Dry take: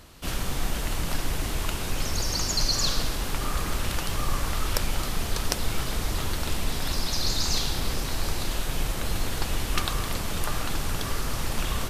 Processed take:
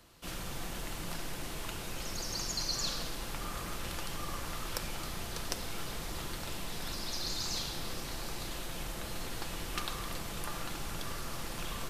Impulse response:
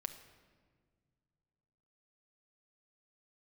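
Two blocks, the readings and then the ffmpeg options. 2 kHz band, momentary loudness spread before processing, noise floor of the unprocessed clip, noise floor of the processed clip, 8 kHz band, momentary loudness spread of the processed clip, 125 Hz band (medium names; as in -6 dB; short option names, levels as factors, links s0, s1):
-8.5 dB, 5 LU, -31 dBFS, -41 dBFS, -9.0 dB, 6 LU, -12.5 dB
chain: -filter_complex "[1:a]atrim=start_sample=2205[s0];[0:a][s0]afir=irnorm=-1:irlink=0,acrossover=split=130|1300|3100[s1][s2][s3][s4];[s1]alimiter=limit=0.0708:level=0:latency=1[s5];[s5][s2][s3][s4]amix=inputs=4:normalize=0,lowshelf=f=120:g=-5.5,volume=0.473"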